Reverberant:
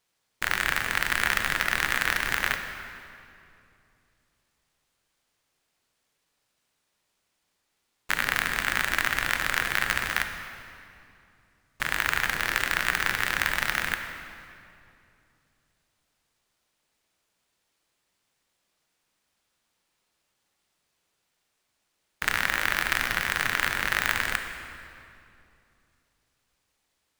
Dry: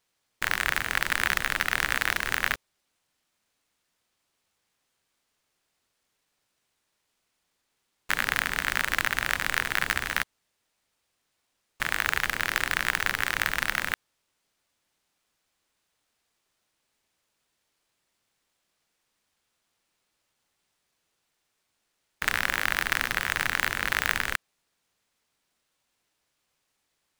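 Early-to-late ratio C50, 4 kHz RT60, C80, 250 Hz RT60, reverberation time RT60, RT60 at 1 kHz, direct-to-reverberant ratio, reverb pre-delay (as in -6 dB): 6.5 dB, 2.0 s, 7.5 dB, 3.2 s, 2.7 s, 2.5 s, 5.5 dB, 22 ms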